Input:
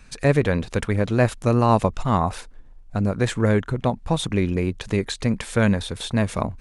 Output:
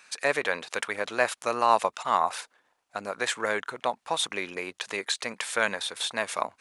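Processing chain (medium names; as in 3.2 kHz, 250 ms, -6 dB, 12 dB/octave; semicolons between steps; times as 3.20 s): high-pass 810 Hz 12 dB/octave; trim +1.5 dB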